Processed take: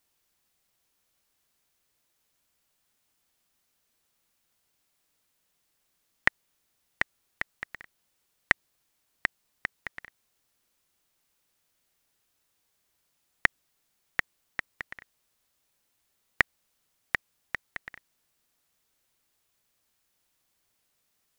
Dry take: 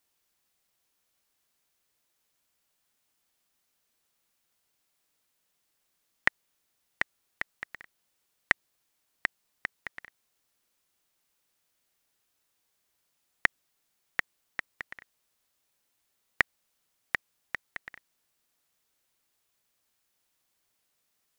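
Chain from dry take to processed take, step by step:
low-shelf EQ 180 Hz +4.5 dB
level +1.5 dB

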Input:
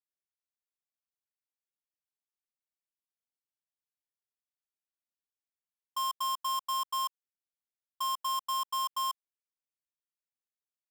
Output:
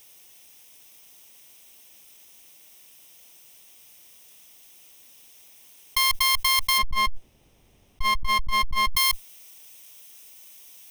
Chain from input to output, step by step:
lower of the sound and its delayed copy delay 0.34 ms
spectral tilt +1.5 dB per octave, from 0:06.77 −3.5 dB per octave, from 0:08.95 +2.5 dB per octave
envelope flattener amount 100%

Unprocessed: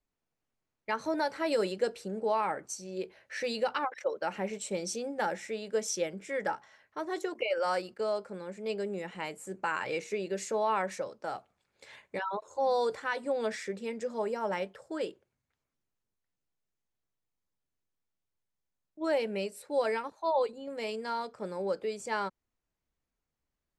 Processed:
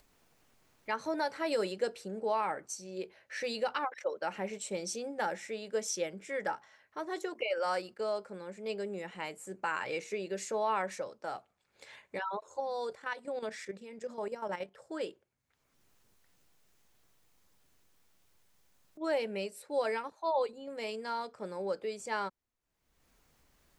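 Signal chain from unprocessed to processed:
0:12.60–0:14.78: output level in coarse steps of 11 dB
low-shelf EQ 410 Hz −3 dB
upward compression, threshold −48 dBFS
level −1.5 dB

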